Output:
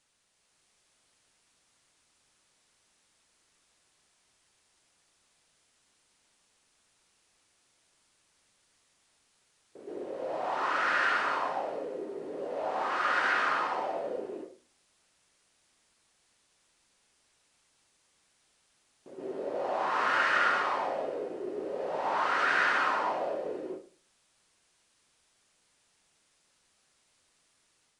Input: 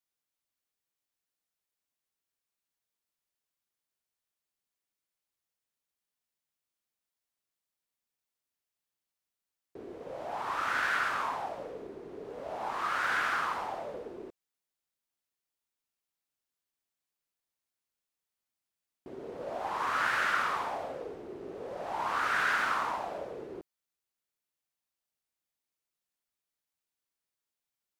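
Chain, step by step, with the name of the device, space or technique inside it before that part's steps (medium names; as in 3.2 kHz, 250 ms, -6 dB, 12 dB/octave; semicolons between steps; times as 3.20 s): filmed off a television (band-pass 170–6800 Hz; peaking EQ 550 Hz +9 dB 0.22 oct; reverberation RT60 0.40 s, pre-delay 117 ms, DRR -7 dB; white noise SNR 32 dB; level rider gain up to 4 dB; trim -9 dB; AAC 96 kbps 22.05 kHz)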